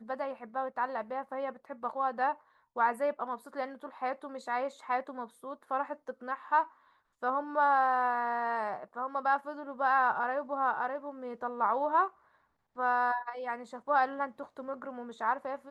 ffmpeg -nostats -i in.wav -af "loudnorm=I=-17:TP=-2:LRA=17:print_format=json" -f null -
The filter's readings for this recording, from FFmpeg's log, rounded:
"input_i" : "-32.5",
"input_tp" : "-15.0",
"input_lra" : "3.8",
"input_thresh" : "-42.9",